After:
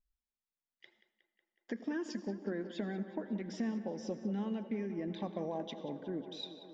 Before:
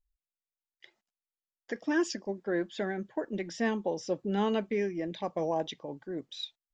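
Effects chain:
parametric band 220 Hz +11 dB 0.66 octaves
downward compressor, threshold −31 dBFS, peak gain reduction 13 dB
high-frequency loss of the air 66 metres
tape delay 183 ms, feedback 84%, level −11.5 dB, low-pass 3,700 Hz
on a send at −14.5 dB: convolution reverb RT60 0.65 s, pre-delay 73 ms
on the sum: level −3.5 dB

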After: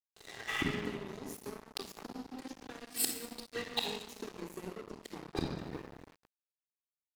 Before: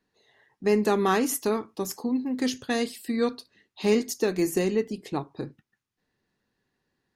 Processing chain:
0:00.50–0:01.32: healed spectral selection 740–3,600 Hz after
downward compressor 10 to 1, threshold −32 dBFS, peak gain reduction 15.5 dB
far-end echo of a speakerphone 350 ms, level −21 dB
gate with flip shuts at −35 dBFS, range −27 dB
rectangular room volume 3,100 cubic metres, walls mixed, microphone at 3.7 metres
dead-zone distortion −57.5 dBFS
0:01.96–0:02.80: multiband upward and downward compressor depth 100%
level +18 dB

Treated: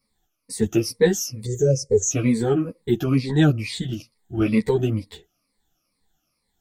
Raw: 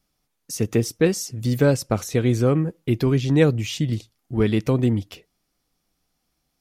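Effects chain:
rippled gain that drifts along the octave scale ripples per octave 0.94, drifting −2.2 Hz, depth 18 dB
0:01.45–0:02.11: drawn EQ curve 150 Hz 0 dB, 260 Hz −16 dB, 420 Hz +10 dB, 880 Hz −27 dB, 1,300 Hz −30 dB, 1,900 Hz −14 dB, 2,800 Hz −23 dB, 4,100 Hz −20 dB, 6,500 Hz +13 dB, 11,000 Hz −18 dB
string-ensemble chorus

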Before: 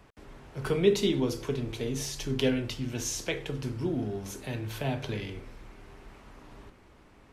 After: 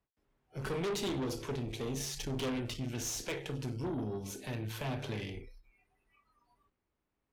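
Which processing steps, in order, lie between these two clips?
noise reduction from a noise print of the clip's start 26 dB
tube saturation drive 32 dB, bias 0.55
every ending faded ahead of time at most 330 dB per second

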